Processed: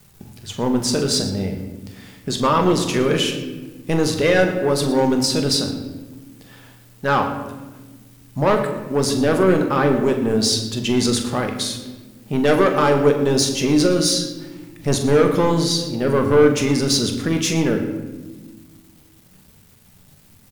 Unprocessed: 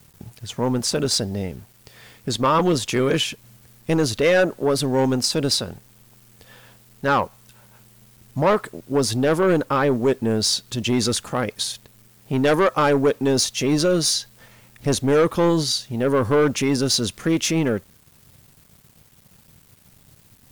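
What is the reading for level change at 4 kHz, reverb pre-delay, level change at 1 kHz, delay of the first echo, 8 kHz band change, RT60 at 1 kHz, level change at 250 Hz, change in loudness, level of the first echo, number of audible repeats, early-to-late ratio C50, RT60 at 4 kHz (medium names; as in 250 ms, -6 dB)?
+1.5 dB, 3 ms, +1.5 dB, 43 ms, +1.0 dB, 1.1 s, +3.0 dB, +2.0 dB, -11.0 dB, 2, 7.5 dB, 0.80 s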